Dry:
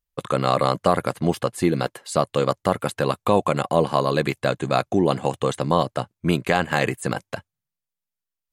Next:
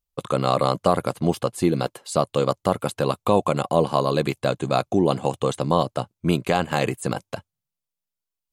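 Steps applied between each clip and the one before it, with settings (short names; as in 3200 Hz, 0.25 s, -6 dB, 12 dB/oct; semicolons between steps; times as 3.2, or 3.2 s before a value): bell 1800 Hz -7.5 dB 0.61 oct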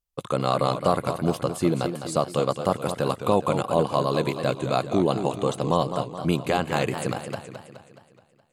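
warbling echo 0.211 s, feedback 53%, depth 146 cents, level -9 dB; gain -2.5 dB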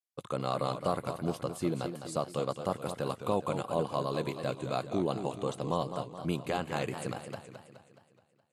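gain -9 dB; Vorbis 64 kbps 32000 Hz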